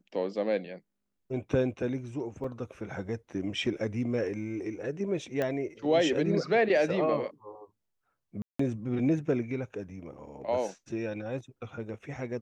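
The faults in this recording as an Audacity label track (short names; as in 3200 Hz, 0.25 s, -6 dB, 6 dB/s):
2.440000	2.440000	gap 3.9 ms
5.420000	5.420000	pop -18 dBFS
8.420000	8.590000	gap 0.174 s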